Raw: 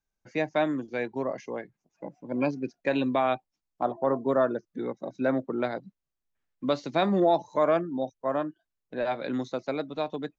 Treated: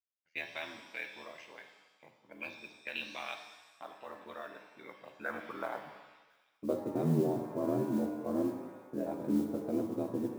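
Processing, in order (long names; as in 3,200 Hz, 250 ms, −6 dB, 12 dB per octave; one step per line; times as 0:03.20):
noise gate −45 dBFS, range −14 dB
parametric band 160 Hz +11.5 dB 0.57 octaves
brickwall limiter −17.5 dBFS, peak gain reduction 6 dB
band-pass filter sweep 2,800 Hz → 290 Hz, 0:04.63–0:07.13
ring modulation 41 Hz
noise that follows the level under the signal 28 dB
delay with a high-pass on its return 1,051 ms, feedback 60%, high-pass 3,300 Hz, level −21 dB
reverb with rising layers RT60 1.1 s, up +7 semitones, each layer −8 dB, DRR 5.5 dB
level +3.5 dB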